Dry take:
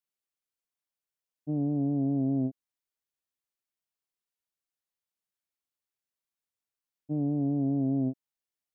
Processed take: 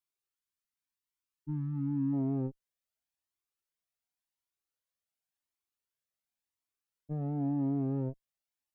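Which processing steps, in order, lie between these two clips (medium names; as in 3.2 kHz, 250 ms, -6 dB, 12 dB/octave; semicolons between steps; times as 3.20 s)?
single-diode clipper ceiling -26.5 dBFS; spectral selection erased 0.32–2.13 s, 390–860 Hz; Shepard-style flanger rising 0.91 Hz; trim +2.5 dB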